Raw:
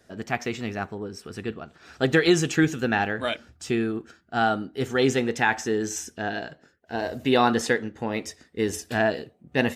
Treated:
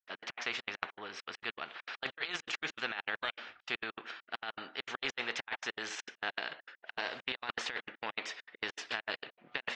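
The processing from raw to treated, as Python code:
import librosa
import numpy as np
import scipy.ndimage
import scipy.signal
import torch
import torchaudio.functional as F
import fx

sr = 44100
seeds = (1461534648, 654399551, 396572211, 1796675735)

y = scipy.signal.sosfilt(scipy.signal.butter(2, 1400.0, 'highpass', fs=sr, output='sos'), x)
y = fx.over_compress(y, sr, threshold_db=-33.0, ratio=-0.5)
y = scipy.signal.sosfilt(scipy.signal.butter(4, 3000.0, 'lowpass', fs=sr, output='sos'), y)
y = fx.step_gate(y, sr, bpm=200, pattern='.x.x.xxx', floor_db=-60.0, edge_ms=4.5)
y = fx.spectral_comp(y, sr, ratio=2.0)
y = F.gain(torch.from_numpy(y), 1.0).numpy()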